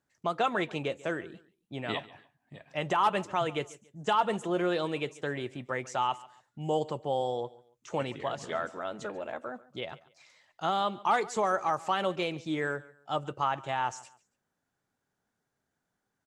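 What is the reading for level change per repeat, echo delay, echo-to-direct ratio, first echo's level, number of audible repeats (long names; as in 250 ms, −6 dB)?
−10.5 dB, 141 ms, −20.0 dB, −20.5 dB, 2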